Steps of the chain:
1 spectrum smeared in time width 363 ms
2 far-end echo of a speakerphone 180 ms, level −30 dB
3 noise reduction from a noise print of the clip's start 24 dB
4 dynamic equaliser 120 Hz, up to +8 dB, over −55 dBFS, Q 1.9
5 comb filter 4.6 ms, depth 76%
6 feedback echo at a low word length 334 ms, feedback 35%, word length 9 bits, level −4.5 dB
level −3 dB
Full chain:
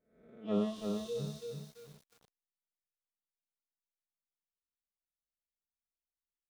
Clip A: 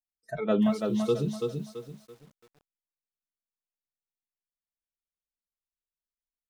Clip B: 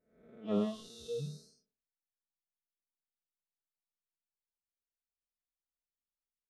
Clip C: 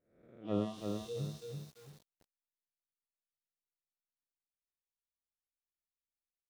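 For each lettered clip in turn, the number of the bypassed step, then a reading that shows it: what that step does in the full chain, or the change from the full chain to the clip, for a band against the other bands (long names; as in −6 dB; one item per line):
1, 2 kHz band +5.5 dB
6, change in momentary loudness spread −6 LU
5, 125 Hz band +3.5 dB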